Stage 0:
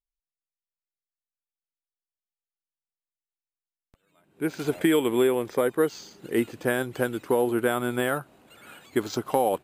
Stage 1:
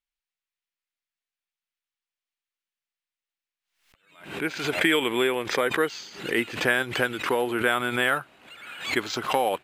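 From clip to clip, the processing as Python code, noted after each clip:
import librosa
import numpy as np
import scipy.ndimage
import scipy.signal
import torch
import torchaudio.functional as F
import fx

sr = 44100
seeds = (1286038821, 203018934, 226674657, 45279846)

y = fx.peak_eq(x, sr, hz=2400.0, db=15.0, octaves=2.6)
y = fx.pre_swell(y, sr, db_per_s=100.0)
y = y * 10.0 ** (-5.5 / 20.0)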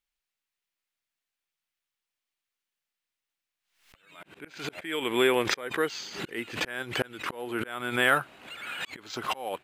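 y = fx.auto_swell(x, sr, attack_ms=604.0)
y = y * 10.0 ** (3.5 / 20.0)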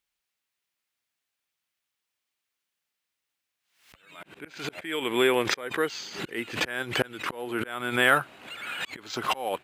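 y = scipy.signal.sosfilt(scipy.signal.butter(2, 57.0, 'highpass', fs=sr, output='sos'), x)
y = fx.rider(y, sr, range_db=5, speed_s=2.0)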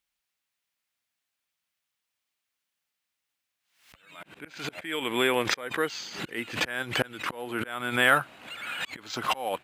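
y = fx.peak_eq(x, sr, hz=390.0, db=-5.0, octaves=0.4)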